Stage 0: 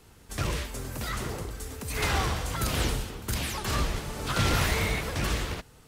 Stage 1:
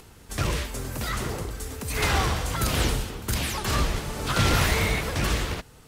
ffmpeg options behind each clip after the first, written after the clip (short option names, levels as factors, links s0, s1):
-af "acompressor=mode=upward:threshold=0.00355:ratio=2.5,volume=1.5"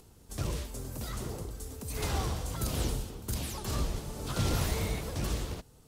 -af "equalizer=f=1900:w=0.73:g=-10,volume=0.473"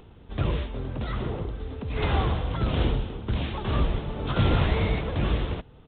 -af "aresample=8000,aresample=44100,volume=2.51"